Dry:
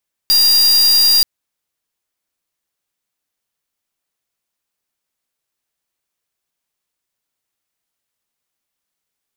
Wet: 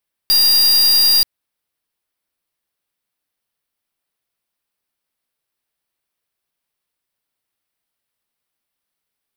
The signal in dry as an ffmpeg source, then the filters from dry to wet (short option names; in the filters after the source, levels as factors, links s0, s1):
-f lavfi -i "aevalsrc='0.282*(2*lt(mod(4790*t,1),0.44)-1)':d=0.93:s=44100"
-af "equalizer=f=6800:w=3.2:g=-9"